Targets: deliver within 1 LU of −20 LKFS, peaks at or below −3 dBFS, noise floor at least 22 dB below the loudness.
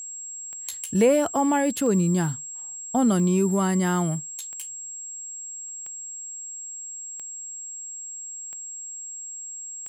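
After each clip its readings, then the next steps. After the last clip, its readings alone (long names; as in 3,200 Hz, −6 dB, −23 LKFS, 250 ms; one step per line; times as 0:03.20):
number of clicks 8; interfering tone 7,600 Hz; level of the tone −34 dBFS; integrated loudness −26.5 LKFS; sample peak −9.5 dBFS; target loudness −20.0 LKFS
→ click removal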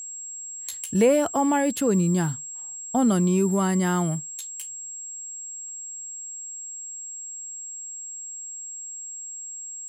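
number of clicks 0; interfering tone 7,600 Hz; level of the tone −34 dBFS
→ notch filter 7,600 Hz, Q 30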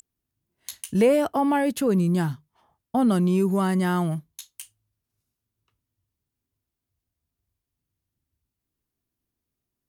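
interfering tone none found; integrated loudness −23.0 LKFS; sample peak −9.5 dBFS; target loudness −20.0 LKFS
→ level +3 dB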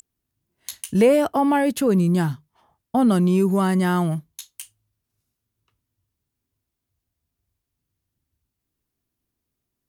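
integrated loudness −20.0 LKFS; sample peak −6.5 dBFS; background noise floor −82 dBFS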